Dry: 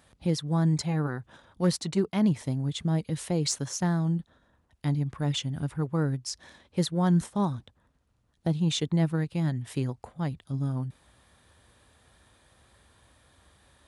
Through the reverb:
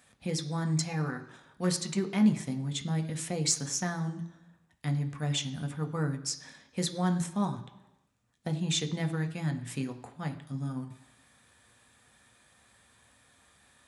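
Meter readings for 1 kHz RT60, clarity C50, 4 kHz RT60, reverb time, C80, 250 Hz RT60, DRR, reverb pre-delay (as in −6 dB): 1.0 s, 13.0 dB, 0.95 s, 1.0 s, 15.5 dB, 0.90 s, 5.5 dB, 3 ms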